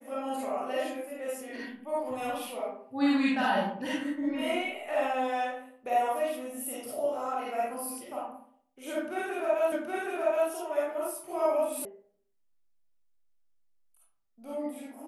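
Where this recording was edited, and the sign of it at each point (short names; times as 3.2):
9.72 repeat of the last 0.77 s
11.85 sound cut off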